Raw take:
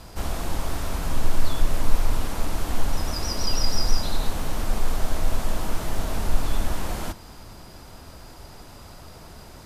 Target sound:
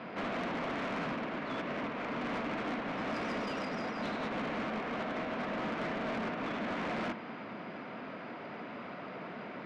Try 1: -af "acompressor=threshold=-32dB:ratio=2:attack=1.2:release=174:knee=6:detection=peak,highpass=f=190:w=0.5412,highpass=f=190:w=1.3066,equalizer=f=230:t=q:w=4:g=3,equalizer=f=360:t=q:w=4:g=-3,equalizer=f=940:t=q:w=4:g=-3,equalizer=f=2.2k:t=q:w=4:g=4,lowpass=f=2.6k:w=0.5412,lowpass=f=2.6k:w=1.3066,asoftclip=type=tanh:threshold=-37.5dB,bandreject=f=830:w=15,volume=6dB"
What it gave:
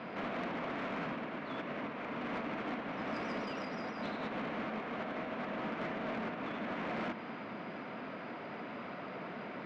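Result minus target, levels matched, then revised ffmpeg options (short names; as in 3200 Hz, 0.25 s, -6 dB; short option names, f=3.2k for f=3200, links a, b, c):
compressor: peak gain reduction +5 dB
-af "acompressor=threshold=-22dB:ratio=2:attack=1.2:release=174:knee=6:detection=peak,highpass=f=190:w=0.5412,highpass=f=190:w=1.3066,equalizer=f=230:t=q:w=4:g=3,equalizer=f=360:t=q:w=4:g=-3,equalizer=f=940:t=q:w=4:g=-3,equalizer=f=2.2k:t=q:w=4:g=4,lowpass=f=2.6k:w=0.5412,lowpass=f=2.6k:w=1.3066,asoftclip=type=tanh:threshold=-37.5dB,bandreject=f=830:w=15,volume=6dB"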